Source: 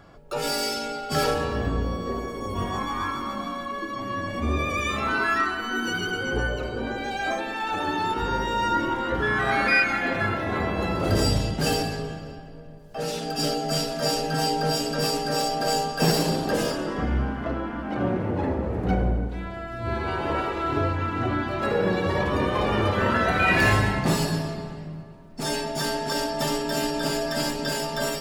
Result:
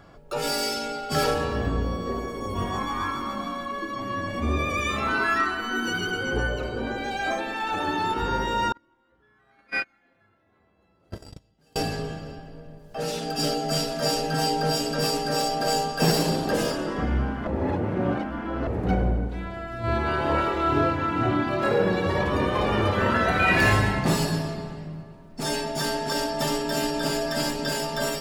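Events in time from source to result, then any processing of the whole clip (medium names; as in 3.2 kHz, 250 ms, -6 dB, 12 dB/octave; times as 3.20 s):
8.72–11.76 s: gate -18 dBFS, range -39 dB
17.47–18.67 s: reverse
19.81–21.83 s: doubling 27 ms -4 dB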